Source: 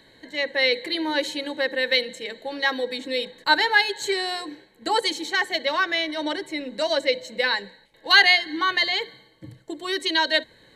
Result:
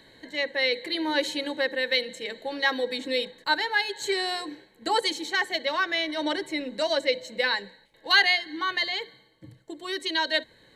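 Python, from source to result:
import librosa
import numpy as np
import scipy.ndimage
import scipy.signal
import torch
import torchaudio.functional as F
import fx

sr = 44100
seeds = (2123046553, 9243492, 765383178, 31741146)

y = fx.rider(x, sr, range_db=4, speed_s=0.5)
y = F.gain(torch.from_numpy(y), -4.0).numpy()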